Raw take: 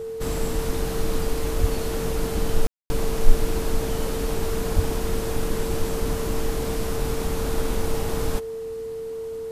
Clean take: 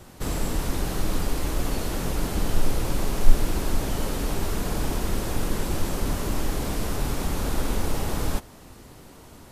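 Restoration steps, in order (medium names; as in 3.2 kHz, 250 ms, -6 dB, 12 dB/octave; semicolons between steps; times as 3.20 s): band-stop 450 Hz, Q 30; de-plosive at 1.60/4.75 s; room tone fill 2.67–2.90 s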